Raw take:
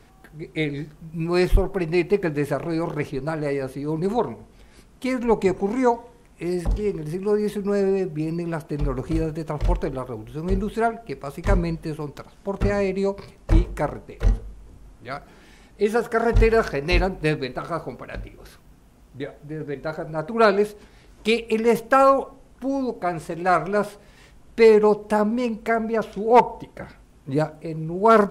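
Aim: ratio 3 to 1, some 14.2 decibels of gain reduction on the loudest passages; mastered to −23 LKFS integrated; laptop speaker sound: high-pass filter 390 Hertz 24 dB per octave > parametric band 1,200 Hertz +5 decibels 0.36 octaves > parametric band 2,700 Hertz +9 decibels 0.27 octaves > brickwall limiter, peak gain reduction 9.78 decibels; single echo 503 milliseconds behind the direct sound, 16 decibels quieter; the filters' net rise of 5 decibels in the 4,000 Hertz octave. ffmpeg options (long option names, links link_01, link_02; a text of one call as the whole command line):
ffmpeg -i in.wav -af "equalizer=frequency=4000:width_type=o:gain=3.5,acompressor=threshold=-29dB:ratio=3,highpass=frequency=390:width=0.5412,highpass=frequency=390:width=1.3066,equalizer=frequency=1200:width_type=o:width=0.36:gain=5,equalizer=frequency=2700:width_type=o:width=0.27:gain=9,aecho=1:1:503:0.158,volume=13.5dB,alimiter=limit=-10.5dB:level=0:latency=1" out.wav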